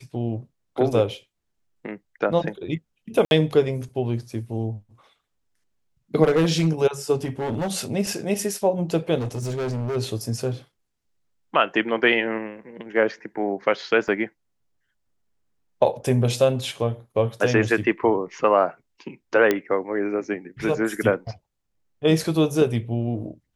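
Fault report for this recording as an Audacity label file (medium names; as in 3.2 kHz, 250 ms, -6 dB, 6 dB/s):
3.250000	3.310000	dropout 61 ms
6.230000	6.680000	clipped -14.5 dBFS
7.240000	7.720000	clipped -22 dBFS
9.170000	9.970000	clipped -24 dBFS
14.080000	14.080000	dropout 2.4 ms
19.510000	19.510000	pop -7 dBFS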